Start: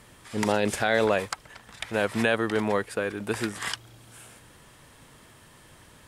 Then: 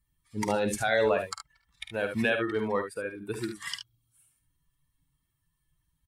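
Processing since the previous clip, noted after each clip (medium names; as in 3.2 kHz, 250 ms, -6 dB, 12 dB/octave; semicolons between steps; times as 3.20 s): expander on every frequency bin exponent 2; on a send: early reflections 50 ms -9.5 dB, 73 ms -8.5 dB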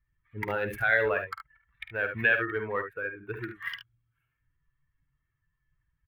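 local Wiener filter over 9 samples; FFT filter 130 Hz 0 dB, 210 Hz -11 dB, 420 Hz -2 dB, 850 Hz -7 dB, 1.6 kHz +8 dB, 2.6 kHz +1 dB, 4.2 kHz -12 dB, 8 kHz -25 dB, 14 kHz +4 dB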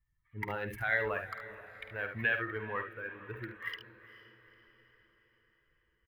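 comb 1 ms, depth 32%; echo that smears into a reverb 461 ms, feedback 52%, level -15.5 dB; trim -5.5 dB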